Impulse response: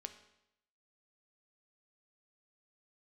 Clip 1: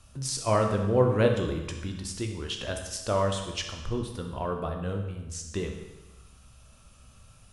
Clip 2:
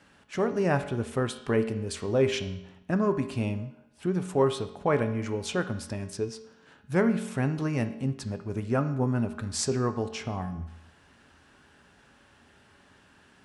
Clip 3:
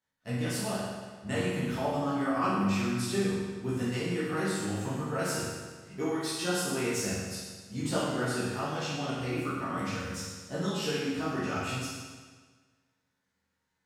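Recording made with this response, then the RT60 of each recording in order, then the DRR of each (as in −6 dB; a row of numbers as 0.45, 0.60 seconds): 2; 1.1, 0.80, 1.5 seconds; 3.0, 7.5, −10.5 decibels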